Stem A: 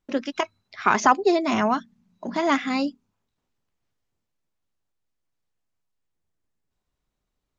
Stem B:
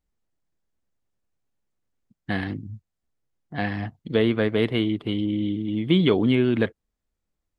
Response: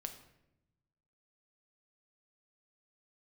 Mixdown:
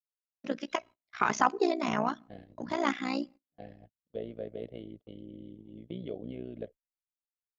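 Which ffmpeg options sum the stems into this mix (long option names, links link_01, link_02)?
-filter_complex "[0:a]adelay=350,volume=-5dB,asplit=2[link_01][link_02];[link_02]volume=-17.5dB[link_03];[1:a]firequalizer=gain_entry='entry(360,0);entry(580,13);entry(910,-14);entry(2700,-6)':delay=0.05:min_phase=1,volume=-18dB[link_04];[2:a]atrim=start_sample=2205[link_05];[link_03][link_05]afir=irnorm=-1:irlink=0[link_06];[link_01][link_04][link_06]amix=inputs=3:normalize=0,agate=range=-31dB:threshold=-45dB:ratio=16:detection=peak,tremolo=f=60:d=0.857"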